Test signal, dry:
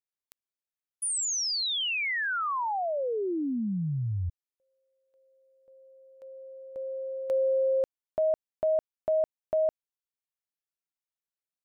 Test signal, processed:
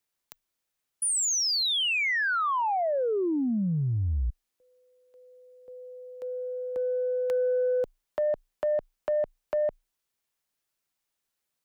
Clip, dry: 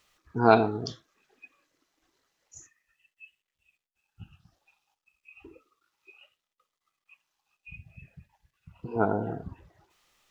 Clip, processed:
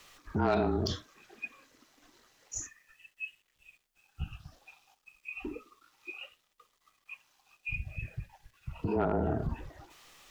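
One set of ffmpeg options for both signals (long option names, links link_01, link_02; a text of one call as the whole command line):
ffmpeg -i in.wav -af "afreqshift=-29,acompressor=threshold=-38dB:ratio=3:attack=1.1:release=76:detection=peak,aeval=exprs='0.0668*(cos(1*acos(clip(val(0)/0.0668,-1,1)))-cos(1*PI/2))+0.00596*(cos(5*acos(clip(val(0)/0.0668,-1,1)))-cos(5*PI/2))':channel_layout=same,volume=8dB" out.wav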